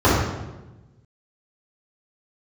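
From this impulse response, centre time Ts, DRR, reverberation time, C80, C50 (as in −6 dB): 74 ms, −12.0 dB, 1.1 s, 3.0 dB, −0.5 dB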